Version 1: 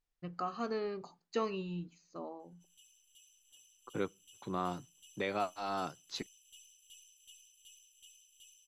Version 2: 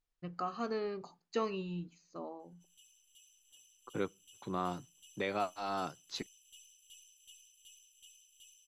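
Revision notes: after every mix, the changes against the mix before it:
none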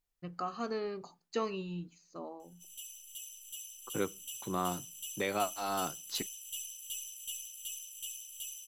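second voice: send +9.5 dB; background +11.5 dB; master: remove air absorption 56 m

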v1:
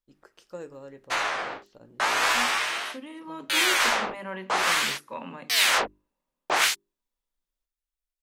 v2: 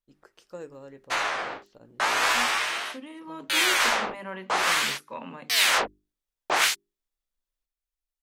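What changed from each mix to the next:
reverb: off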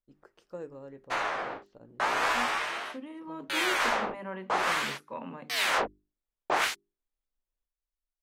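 master: add high shelf 2100 Hz -11.5 dB

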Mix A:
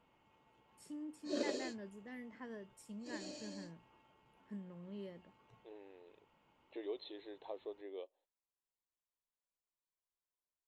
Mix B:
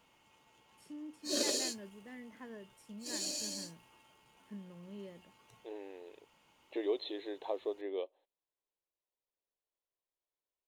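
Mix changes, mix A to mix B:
second voice +9.0 dB; background: remove tape spacing loss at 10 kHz 32 dB; master: add bell 7700 Hz -6.5 dB 0.43 oct

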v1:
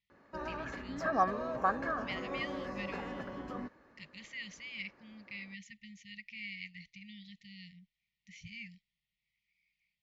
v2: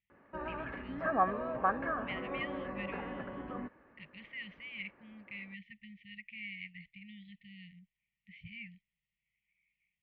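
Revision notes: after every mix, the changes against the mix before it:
master: add steep low-pass 3000 Hz 36 dB/oct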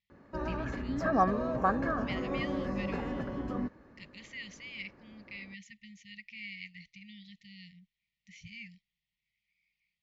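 background: add low shelf 380 Hz +12 dB; master: remove steep low-pass 3000 Hz 36 dB/oct

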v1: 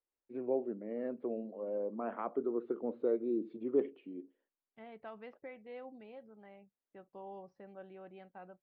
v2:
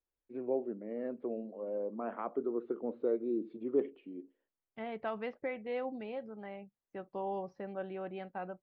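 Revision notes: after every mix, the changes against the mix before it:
second voice +10.5 dB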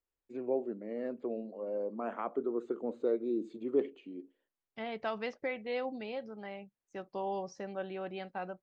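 master: remove air absorption 400 m

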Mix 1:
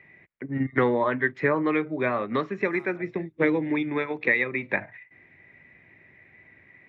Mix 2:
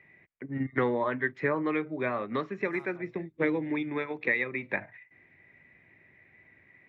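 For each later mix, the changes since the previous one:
first voice -5.0 dB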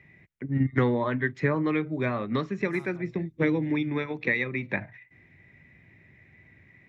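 master: add tone controls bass +12 dB, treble +14 dB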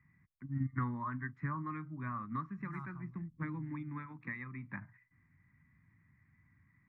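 first voice -9.5 dB; master: add EQ curve 170 Hz 0 dB, 280 Hz -4 dB, 450 Hz -25 dB, 710 Hz -15 dB, 1100 Hz +6 dB, 2000 Hz -8 dB, 3100 Hz -23 dB

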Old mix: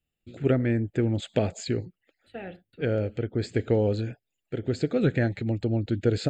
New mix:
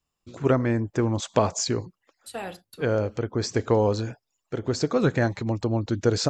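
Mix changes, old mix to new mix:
second voice: remove LPF 2100 Hz 12 dB/oct; master: remove fixed phaser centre 2500 Hz, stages 4

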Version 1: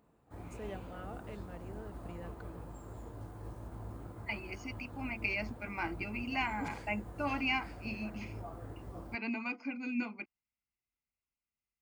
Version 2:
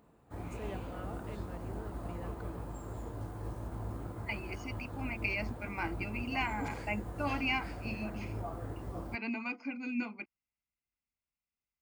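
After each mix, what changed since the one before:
background +5.0 dB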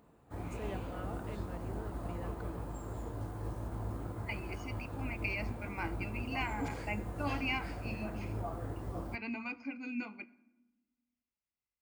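second voice -4.5 dB; reverb: on, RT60 1.1 s

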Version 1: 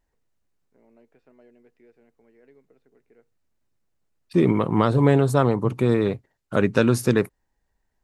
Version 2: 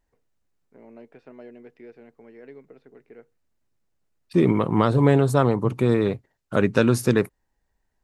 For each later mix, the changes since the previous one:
first voice +11.0 dB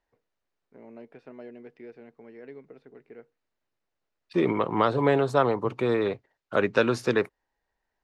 second voice: add three-band isolator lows -12 dB, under 360 Hz, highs -20 dB, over 5700 Hz

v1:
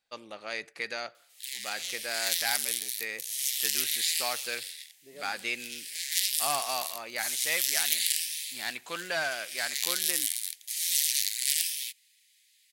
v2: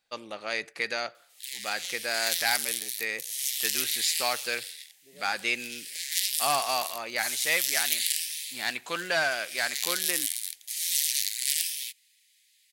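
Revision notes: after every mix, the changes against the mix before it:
first voice +4.5 dB; second voice -5.5 dB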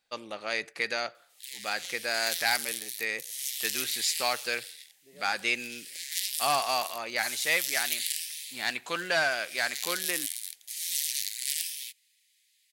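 background -4.0 dB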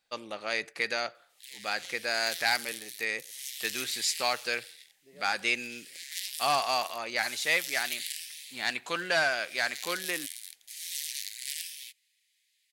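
background: add tilt -2 dB/oct

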